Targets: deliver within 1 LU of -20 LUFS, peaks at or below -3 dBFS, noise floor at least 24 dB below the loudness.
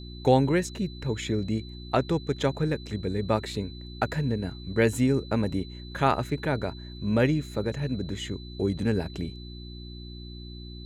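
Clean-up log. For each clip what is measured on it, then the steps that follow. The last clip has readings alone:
hum 60 Hz; harmonics up to 360 Hz; hum level -39 dBFS; steady tone 4000 Hz; tone level -47 dBFS; loudness -28.0 LUFS; peak -7.5 dBFS; loudness target -20.0 LUFS
-> de-hum 60 Hz, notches 6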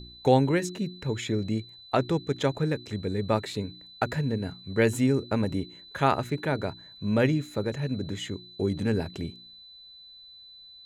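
hum none; steady tone 4000 Hz; tone level -47 dBFS
-> notch 4000 Hz, Q 30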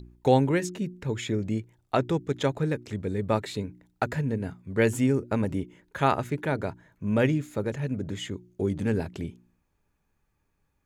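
steady tone none; loudness -28.5 LUFS; peak -7.5 dBFS; loudness target -20.0 LUFS
-> gain +8.5 dB; limiter -3 dBFS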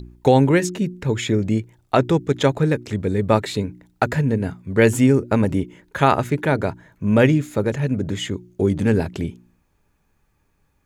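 loudness -20.0 LUFS; peak -3.0 dBFS; noise floor -66 dBFS

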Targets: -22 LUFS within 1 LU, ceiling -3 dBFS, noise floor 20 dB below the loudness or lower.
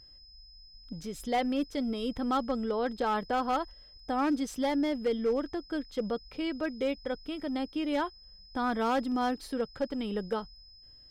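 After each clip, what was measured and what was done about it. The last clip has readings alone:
clipped 0.9%; flat tops at -22.5 dBFS; steady tone 5100 Hz; tone level -53 dBFS; loudness -32.0 LUFS; peak -22.5 dBFS; loudness target -22.0 LUFS
-> clip repair -22.5 dBFS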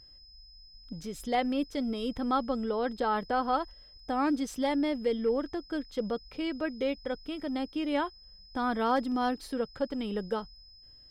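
clipped 0.0%; steady tone 5100 Hz; tone level -53 dBFS
-> notch 5100 Hz, Q 30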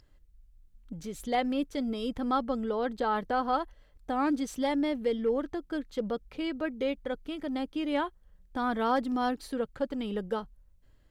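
steady tone none; loudness -31.5 LUFS; peak -16.5 dBFS; loudness target -22.0 LUFS
-> gain +9.5 dB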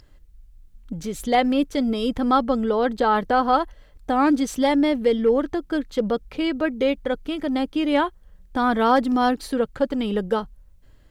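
loudness -22.0 LUFS; peak -7.0 dBFS; noise floor -52 dBFS

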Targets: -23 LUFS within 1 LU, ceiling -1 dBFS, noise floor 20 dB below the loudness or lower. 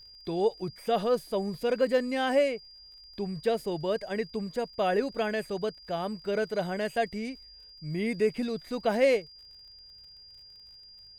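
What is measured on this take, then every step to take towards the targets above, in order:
ticks 43/s; steady tone 4800 Hz; tone level -49 dBFS; loudness -30.0 LUFS; peak -12.0 dBFS; loudness target -23.0 LUFS
-> de-click; notch 4800 Hz, Q 30; gain +7 dB

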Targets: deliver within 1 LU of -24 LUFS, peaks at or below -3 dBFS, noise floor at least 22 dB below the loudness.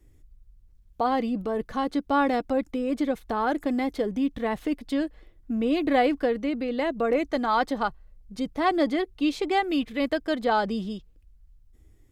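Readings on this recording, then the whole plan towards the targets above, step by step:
loudness -26.5 LUFS; peak -11.0 dBFS; loudness target -24.0 LUFS
-> gain +2.5 dB

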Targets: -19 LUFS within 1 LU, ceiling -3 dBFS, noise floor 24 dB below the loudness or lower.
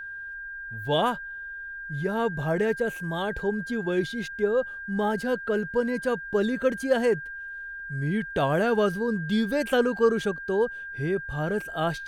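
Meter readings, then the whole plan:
steady tone 1600 Hz; tone level -35 dBFS; loudness -27.0 LUFS; peak -9.5 dBFS; loudness target -19.0 LUFS
-> notch 1600 Hz, Q 30; gain +8 dB; limiter -3 dBFS

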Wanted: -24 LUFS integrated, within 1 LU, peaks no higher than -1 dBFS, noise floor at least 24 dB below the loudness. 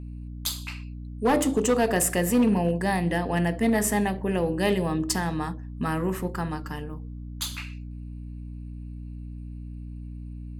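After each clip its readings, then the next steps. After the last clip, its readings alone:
clipped 0.6%; flat tops at -15.5 dBFS; hum 60 Hz; harmonics up to 300 Hz; hum level -35 dBFS; loudness -26.0 LUFS; peak -15.5 dBFS; loudness target -24.0 LUFS
-> clip repair -15.5 dBFS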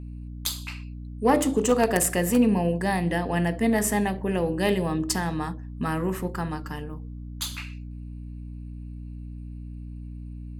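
clipped 0.0%; hum 60 Hz; harmonics up to 300 Hz; hum level -35 dBFS
-> notches 60/120/180/240/300 Hz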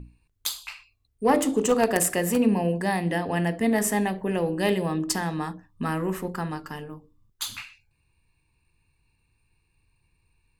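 hum none; loudness -25.5 LUFS; peak -6.0 dBFS; loudness target -24.0 LUFS
-> gain +1.5 dB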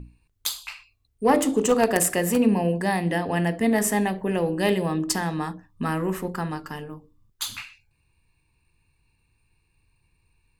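loudness -24.0 LUFS; peak -4.5 dBFS; noise floor -69 dBFS

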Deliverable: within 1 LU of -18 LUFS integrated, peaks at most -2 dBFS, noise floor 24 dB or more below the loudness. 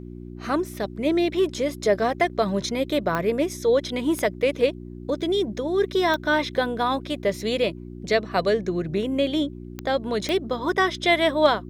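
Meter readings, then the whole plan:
clicks 5; hum 60 Hz; harmonics up to 360 Hz; hum level -35 dBFS; loudness -24.0 LUFS; peak -5.5 dBFS; loudness target -18.0 LUFS
-> de-click; de-hum 60 Hz, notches 6; gain +6 dB; limiter -2 dBFS

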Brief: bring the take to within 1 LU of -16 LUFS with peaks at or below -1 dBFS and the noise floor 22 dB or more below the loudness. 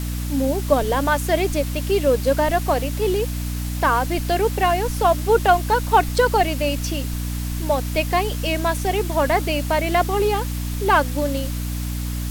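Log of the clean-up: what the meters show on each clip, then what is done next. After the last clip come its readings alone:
hum 60 Hz; harmonics up to 300 Hz; hum level -23 dBFS; noise floor -26 dBFS; noise floor target -43 dBFS; loudness -21.0 LUFS; peak -3.0 dBFS; loudness target -16.0 LUFS
-> notches 60/120/180/240/300 Hz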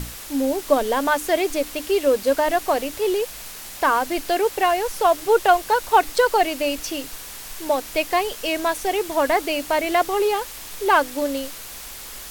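hum none; noise floor -37 dBFS; noise floor target -43 dBFS
-> denoiser 6 dB, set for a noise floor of -37 dBFS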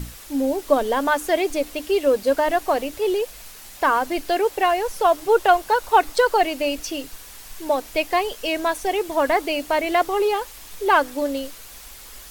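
noise floor -42 dBFS; noise floor target -44 dBFS
-> denoiser 6 dB, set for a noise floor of -42 dBFS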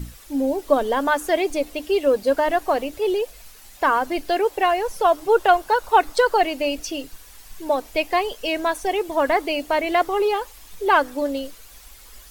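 noise floor -45 dBFS; loudness -21.5 LUFS; peak -3.5 dBFS; loudness target -16.0 LUFS
-> gain +5.5 dB; limiter -1 dBFS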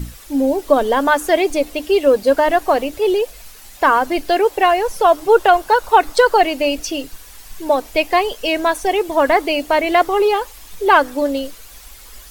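loudness -16.0 LUFS; peak -1.0 dBFS; noise floor -40 dBFS

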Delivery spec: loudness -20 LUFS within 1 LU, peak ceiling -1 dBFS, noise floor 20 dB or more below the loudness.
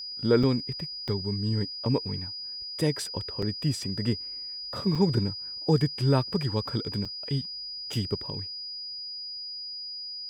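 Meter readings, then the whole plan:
dropouts 5; longest dropout 4.6 ms; steady tone 4900 Hz; tone level -35 dBFS; loudness -29.0 LUFS; peak -10.5 dBFS; loudness target -20.0 LUFS
-> interpolate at 0.43/1.08/3.42/4.95/7.05, 4.6 ms; notch 4900 Hz, Q 30; gain +9 dB

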